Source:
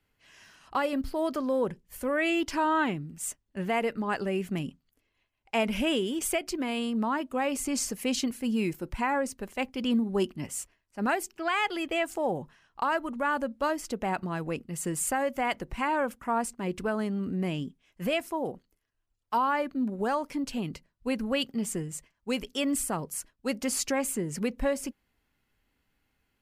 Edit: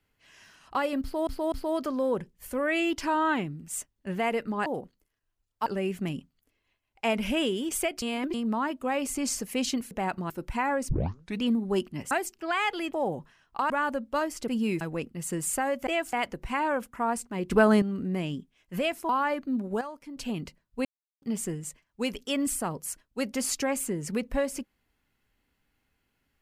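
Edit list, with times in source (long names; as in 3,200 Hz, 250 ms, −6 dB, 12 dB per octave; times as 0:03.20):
0:01.02–0:01.27: repeat, 3 plays
0:06.52–0:06.84: reverse
0:08.41–0:08.74: swap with 0:13.96–0:14.35
0:09.33: tape start 0.54 s
0:10.55–0:11.08: remove
0:11.90–0:12.16: move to 0:15.41
0:12.93–0:13.18: remove
0:16.79–0:17.10: clip gain +10 dB
0:18.37–0:19.37: move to 0:04.16
0:20.09–0:20.45: clip gain −10.5 dB
0:21.13–0:21.50: silence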